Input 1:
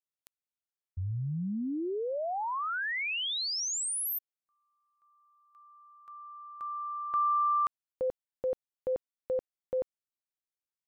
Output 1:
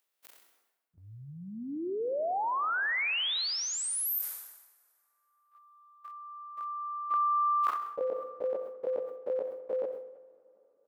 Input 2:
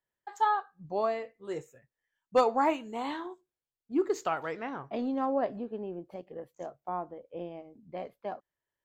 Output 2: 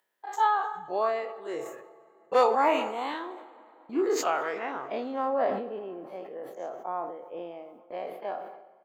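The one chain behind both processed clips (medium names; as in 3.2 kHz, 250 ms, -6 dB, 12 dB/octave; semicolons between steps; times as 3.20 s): every event in the spectrogram widened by 60 ms; high-pass 350 Hz 12 dB/octave; gate -54 dBFS, range -44 dB; peaking EQ 6.7 kHz -4.5 dB 1.3 oct; upward compressor, threshold -42 dBFS; feedback delay 65 ms, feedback 49%, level -19 dB; plate-style reverb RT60 3.4 s, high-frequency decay 0.6×, DRR 16.5 dB; decay stretcher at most 61 dB/s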